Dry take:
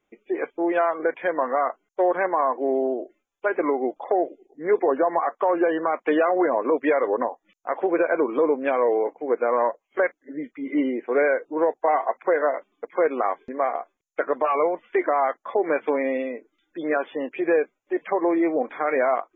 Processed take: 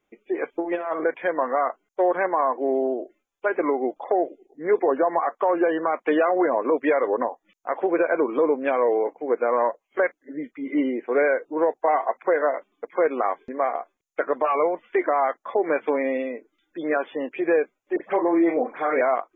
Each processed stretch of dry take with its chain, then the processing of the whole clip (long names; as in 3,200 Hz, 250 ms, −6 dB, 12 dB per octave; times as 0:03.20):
0:00.52–0:01.04: compressor whose output falls as the input rises −25 dBFS, ratio −0.5 + flutter between parallel walls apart 10.9 metres, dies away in 0.32 s
0:17.96–0:19.01: double-tracking delay 36 ms −8 dB + all-pass dispersion highs, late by 87 ms, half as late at 2,100 Hz
whole clip: no processing